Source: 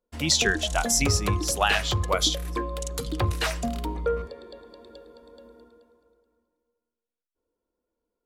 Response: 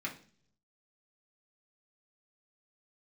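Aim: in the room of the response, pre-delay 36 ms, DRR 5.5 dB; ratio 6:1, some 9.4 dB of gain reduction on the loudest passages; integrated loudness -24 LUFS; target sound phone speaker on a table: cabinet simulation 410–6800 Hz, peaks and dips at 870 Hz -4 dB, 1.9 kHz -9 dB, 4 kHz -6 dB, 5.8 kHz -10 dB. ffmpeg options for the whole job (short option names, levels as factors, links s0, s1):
-filter_complex "[0:a]acompressor=threshold=0.0398:ratio=6,asplit=2[s0][s1];[1:a]atrim=start_sample=2205,adelay=36[s2];[s1][s2]afir=irnorm=-1:irlink=0,volume=0.398[s3];[s0][s3]amix=inputs=2:normalize=0,highpass=f=410:w=0.5412,highpass=f=410:w=1.3066,equalizer=f=870:t=q:w=4:g=-4,equalizer=f=1900:t=q:w=4:g=-9,equalizer=f=4000:t=q:w=4:g=-6,equalizer=f=5800:t=q:w=4:g=-10,lowpass=f=6800:w=0.5412,lowpass=f=6800:w=1.3066,volume=4.22"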